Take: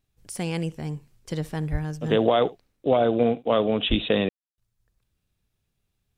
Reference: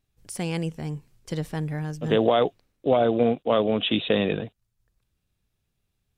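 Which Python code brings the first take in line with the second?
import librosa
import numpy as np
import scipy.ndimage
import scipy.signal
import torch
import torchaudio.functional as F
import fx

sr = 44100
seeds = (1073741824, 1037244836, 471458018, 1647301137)

y = fx.fix_deplosive(x, sr, at_s=(1.71, 3.89))
y = fx.fix_ambience(y, sr, seeds[0], print_start_s=5.48, print_end_s=5.98, start_s=4.29, end_s=4.58)
y = fx.fix_echo_inverse(y, sr, delay_ms=71, level_db=-21.5)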